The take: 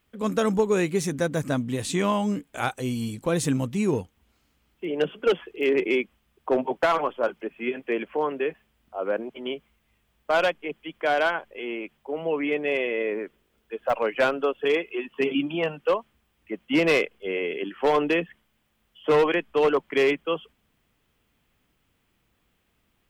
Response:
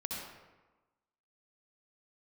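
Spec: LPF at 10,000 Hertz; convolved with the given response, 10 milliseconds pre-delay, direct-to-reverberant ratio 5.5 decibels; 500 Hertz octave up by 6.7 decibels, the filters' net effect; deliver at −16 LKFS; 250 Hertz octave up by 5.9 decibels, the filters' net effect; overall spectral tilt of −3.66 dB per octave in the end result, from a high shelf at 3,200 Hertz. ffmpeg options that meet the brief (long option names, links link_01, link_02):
-filter_complex "[0:a]lowpass=10000,equalizer=frequency=250:width_type=o:gain=5.5,equalizer=frequency=500:width_type=o:gain=6.5,highshelf=frequency=3200:gain=-4.5,asplit=2[link_01][link_02];[1:a]atrim=start_sample=2205,adelay=10[link_03];[link_02][link_03]afir=irnorm=-1:irlink=0,volume=-7dB[link_04];[link_01][link_04]amix=inputs=2:normalize=0,volume=3.5dB"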